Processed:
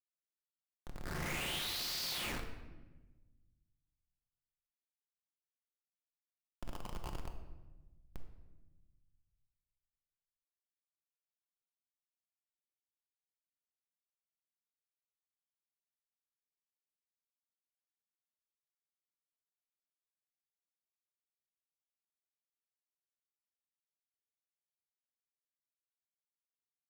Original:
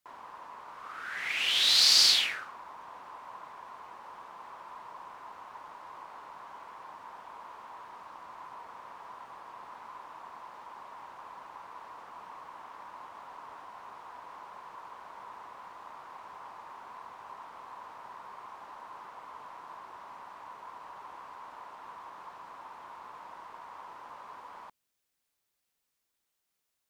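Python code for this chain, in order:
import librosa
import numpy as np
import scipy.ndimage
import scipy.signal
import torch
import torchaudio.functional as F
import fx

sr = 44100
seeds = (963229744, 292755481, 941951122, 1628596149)

y = fx.graphic_eq(x, sr, hz=(125, 1000, 8000), db=(-7, 7, 4), at=(6.6, 7.27), fade=0.02)
y = fx.schmitt(y, sr, flips_db=-33.5)
y = fx.room_shoebox(y, sr, seeds[0], volume_m3=770.0, walls='mixed', distance_m=0.9)
y = y * librosa.db_to_amplitude(-3.0)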